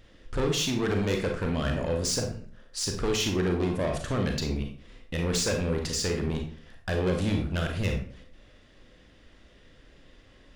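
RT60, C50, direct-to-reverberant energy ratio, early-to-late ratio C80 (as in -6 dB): 0.45 s, 6.0 dB, 2.5 dB, 10.5 dB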